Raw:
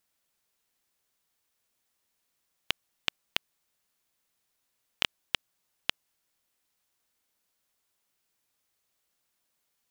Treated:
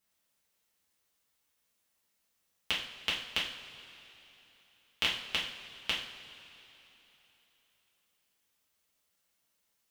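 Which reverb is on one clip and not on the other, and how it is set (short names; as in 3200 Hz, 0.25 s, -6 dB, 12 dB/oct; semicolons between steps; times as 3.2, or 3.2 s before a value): two-slope reverb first 0.49 s, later 3.5 s, from -17 dB, DRR -6 dB; gain -6.5 dB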